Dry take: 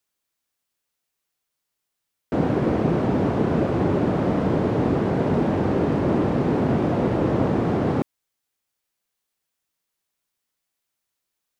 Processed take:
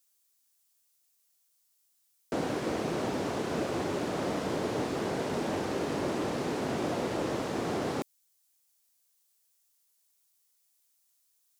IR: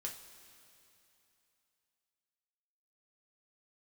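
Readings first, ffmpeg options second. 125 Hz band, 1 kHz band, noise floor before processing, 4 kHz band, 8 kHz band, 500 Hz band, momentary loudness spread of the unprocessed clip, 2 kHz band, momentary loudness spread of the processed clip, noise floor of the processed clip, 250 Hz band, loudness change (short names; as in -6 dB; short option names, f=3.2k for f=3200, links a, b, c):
-16.0 dB, -7.0 dB, -81 dBFS, +2.0 dB, n/a, -9.0 dB, 2 LU, -4.0 dB, 1 LU, -72 dBFS, -12.0 dB, -10.5 dB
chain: -filter_complex "[0:a]bass=f=250:g=-9,treble=f=4k:g=14,acrossover=split=1500[a][b];[a]alimiter=limit=-19.5dB:level=0:latency=1:release=408[c];[c][b]amix=inputs=2:normalize=0,volume=-3.5dB"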